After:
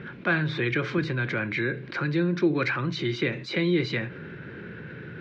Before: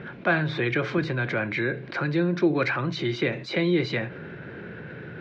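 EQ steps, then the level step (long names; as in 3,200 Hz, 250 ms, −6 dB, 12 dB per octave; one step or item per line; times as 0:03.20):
parametric band 690 Hz −8.5 dB 0.78 octaves
0.0 dB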